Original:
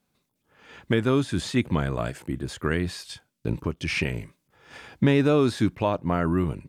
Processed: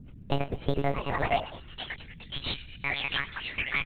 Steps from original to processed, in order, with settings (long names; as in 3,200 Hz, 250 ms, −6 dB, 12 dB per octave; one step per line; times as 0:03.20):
slices reordered back to front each 183 ms, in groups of 3
wrong playback speed 45 rpm record played at 78 rpm
double-tracking delay 20 ms −3 dB
repeating echo 107 ms, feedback 47%, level −19 dB
on a send at −19 dB: convolution reverb, pre-delay 3 ms
on the sum: high-pass filter sweep 100 Hz → 2,300 Hz, 0:00.25–0:02.02
mains hum 60 Hz, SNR 17 dB
in parallel at −5 dB: comparator with hysteresis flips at −18.5 dBFS
on the sum: parametric band 490 Hz −7.5 dB 0.26 octaves
one-pitch LPC vocoder at 8 kHz 140 Hz
downward compressor, threshold −17 dBFS, peak gain reduction 5.5 dB
floating-point word with a short mantissa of 6 bits
level −3.5 dB